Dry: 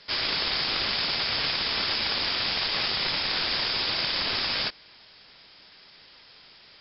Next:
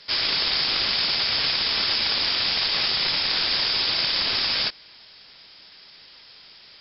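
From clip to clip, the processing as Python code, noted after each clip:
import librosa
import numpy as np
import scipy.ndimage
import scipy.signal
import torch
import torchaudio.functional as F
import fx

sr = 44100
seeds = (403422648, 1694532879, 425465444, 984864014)

y = fx.high_shelf(x, sr, hz=3800.0, db=8.5)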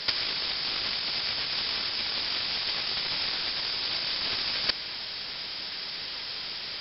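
y = fx.over_compress(x, sr, threshold_db=-30.0, ratio=-0.5)
y = F.gain(torch.from_numpy(y), 3.0).numpy()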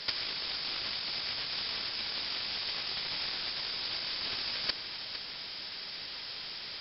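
y = x + 10.0 ** (-10.5 / 20.0) * np.pad(x, (int(457 * sr / 1000.0), 0))[:len(x)]
y = F.gain(torch.from_numpy(y), -6.0).numpy()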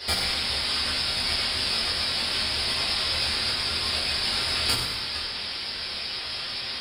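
y = fx.tracing_dist(x, sr, depth_ms=0.059)
y = fx.whisperise(y, sr, seeds[0])
y = fx.rev_fdn(y, sr, rt60_s=1.1, lf_ratio=1.0, hf_ratio=0.9, size_ms=77.0, drr_db=-9.5)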